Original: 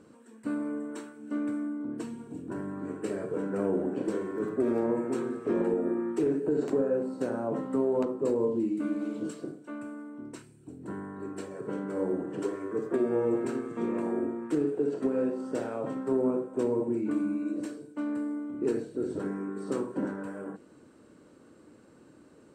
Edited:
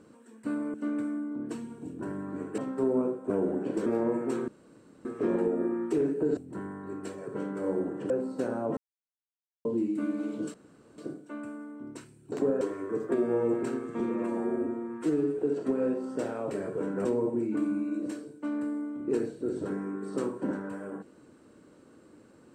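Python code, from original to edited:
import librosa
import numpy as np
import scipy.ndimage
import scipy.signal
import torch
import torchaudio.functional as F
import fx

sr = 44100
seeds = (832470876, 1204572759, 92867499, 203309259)

y = fx.edit(x, sr, fx.cut(start_s=0.74, length_s=0.49),
    fx.swap(start_s=3.07, length_s=0.54, other_s=15.87, other_length_s=0.72),
    fx.cut(start_s=4.17, length_s=0.52),
    fx.insert_room_tone(at_s=5.31, length_s=0.57),
    fx.swap(start_s=6.63, length_s=0.29, other_s=10.7, other_length_s=1.73),
    fx.silence(start_s=7.59, length_s=0.88),
    fx.insert_room_tone(at_s=9.36, length_s=0.44),
    fx.stretch_span(start_s=13.82, length_s=0.92, factor=1.5), tone=tone)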